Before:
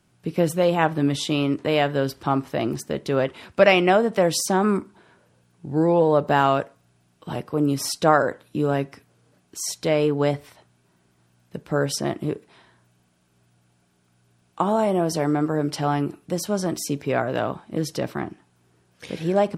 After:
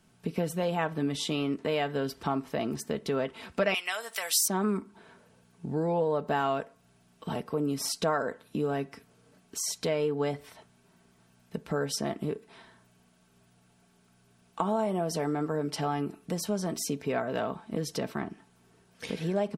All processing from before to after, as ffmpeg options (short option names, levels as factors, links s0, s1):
-filter_complex "[0:a]asettb=1/sr,asplit=3[s0][s1][s2];[s0]atrim=end=3.744[s3];[s1]atrim=start=3.74:end=4.48,asetpts=PTS-STARTPTS,afade=t=in:d=0.004:c=qsin,afade=t=out:st=0.736:d=0.004:c=qsin,highpass=1400,aemphasis=mode=production:type=75fm[s4];[s2]atrim=start=4.476[s5];[s3][s4]acrossfade=d=0.004:c1=hsin:c2=qsin[s6];[s6][s5]acrossfade=d=0.004:c1=qsin:c2=hsin,aecho=1:1:4.5:0.44,acompressor=threshold=0.0224:ratio=2"